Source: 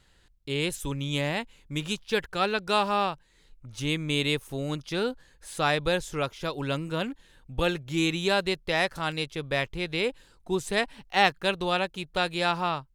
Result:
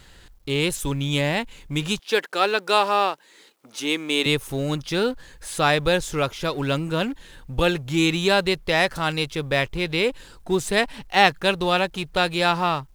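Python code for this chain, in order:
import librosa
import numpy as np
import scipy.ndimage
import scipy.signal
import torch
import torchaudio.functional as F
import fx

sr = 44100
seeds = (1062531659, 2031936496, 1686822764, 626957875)

y = fx.law_mismatch(x, sr, coded='mu')
y = fx.highpass(y, sr, hz=270.0, slope=24, at=(1.99, 4.26))
y = F.gain(torch.from_numpy(y), 5.0).numpy()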